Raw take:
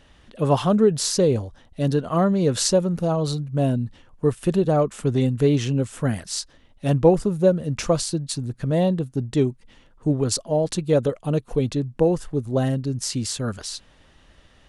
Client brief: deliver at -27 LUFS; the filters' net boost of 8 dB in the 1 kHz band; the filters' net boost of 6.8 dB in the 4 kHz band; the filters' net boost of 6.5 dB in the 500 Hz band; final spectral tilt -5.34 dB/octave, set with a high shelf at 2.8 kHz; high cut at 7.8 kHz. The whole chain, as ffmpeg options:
-af "lowpass=7800,equalizer=f=500:t=o:g=5.5,equalizer=f=1000:t=o:g=8,highshelf=f=2800:g=4,equalizer=f=4000:t=o:g=5,volume=0.355"

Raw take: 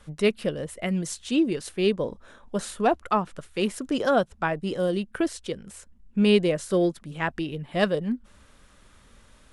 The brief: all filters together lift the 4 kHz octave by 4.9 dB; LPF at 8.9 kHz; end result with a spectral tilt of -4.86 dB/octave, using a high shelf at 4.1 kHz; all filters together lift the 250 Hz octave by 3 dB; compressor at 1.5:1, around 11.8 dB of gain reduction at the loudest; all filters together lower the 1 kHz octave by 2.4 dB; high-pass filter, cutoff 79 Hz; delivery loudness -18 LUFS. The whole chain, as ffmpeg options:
-af "highpass=79,lowpass=8900,equalizer=f=250:t=o:g=4.5,equalizer=f=1000:t=o:g=-4.5,equalizer=f=4000:t=o:g=4.5,highshelf=f=4100:g=5.5,acompressor=threshold=0.00398:ratio=1.5,volume=7.08"

